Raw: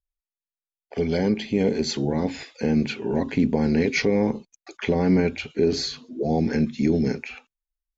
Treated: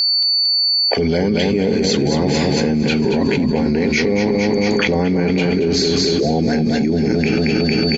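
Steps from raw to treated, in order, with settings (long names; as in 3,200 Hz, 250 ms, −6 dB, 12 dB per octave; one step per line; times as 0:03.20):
steady tone 4,500 Hz −43 dBFS
on a send: repeating echo 227 ms, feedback 56%, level −6 dB
on the sum: envelope flattener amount 100%
level −1.5 dB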